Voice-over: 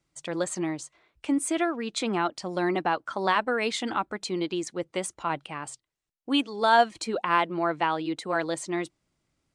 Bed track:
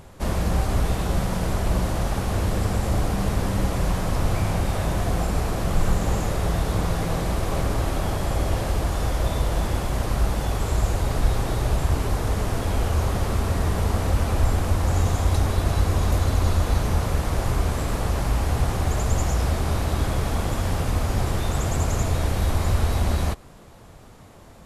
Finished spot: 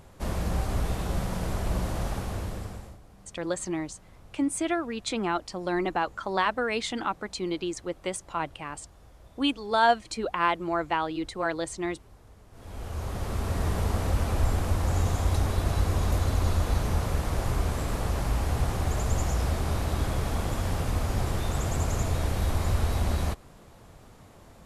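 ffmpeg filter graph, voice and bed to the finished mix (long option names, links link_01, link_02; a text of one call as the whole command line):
ffmpeg -i stem1.wav -i stem2.wav -filter_complex "[0:a]adelay=3100,volume=-1.5dB[link_01];[1:a]volume=19dB,afade=type=out:start_time=2.07:duration=0.91:silence=0.0668344,afade=type=in:start_time=12.51:duration=1.16:silence=0.0562341[link_02];[link_01][link_02]amix=inputs=2:normalize=0" out.wav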